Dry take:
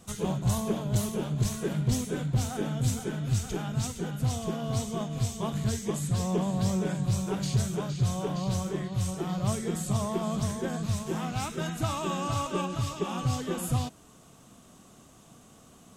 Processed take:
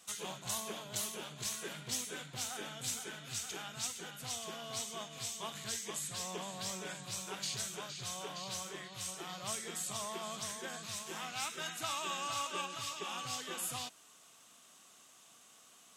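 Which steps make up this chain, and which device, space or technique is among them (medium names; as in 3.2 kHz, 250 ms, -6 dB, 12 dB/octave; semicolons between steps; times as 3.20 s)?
filter by subtraction (in parallel: low-pass 2.6 kHz 12 dB/octave + polarity flip); on the sum: trim -1.5 dB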